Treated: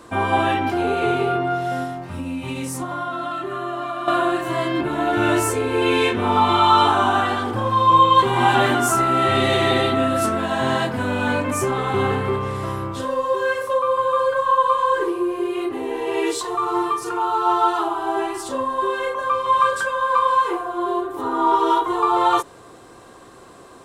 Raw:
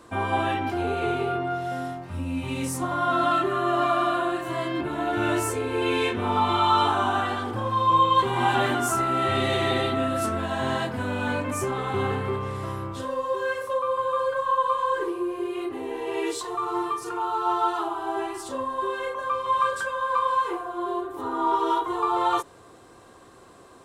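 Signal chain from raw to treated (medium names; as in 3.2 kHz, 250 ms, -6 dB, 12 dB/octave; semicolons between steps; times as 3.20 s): peaking EQ 84 Hz -9 dB 0.23 oct; 1.83–4.08 s: compression 10:1, threshold -30 dBFS, peak gain reduction 12 dB; trim +6 dB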